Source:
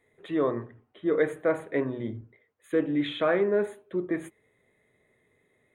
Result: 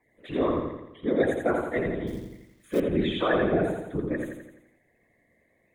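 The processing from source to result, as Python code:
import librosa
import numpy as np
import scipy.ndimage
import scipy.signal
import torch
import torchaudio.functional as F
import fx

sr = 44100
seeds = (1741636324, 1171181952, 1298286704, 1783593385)

y = fx.spec_quant(x, sr, step_db=30)
y = fx.whisperise(y, sr, seeds[0])
y = fx.echo_feedback(y, sr, ms=85, feedback_pct=52, wet_db=-4.0)
y = fx.quant_companded(y, sr, bits=6, at=(2.07, 2.8))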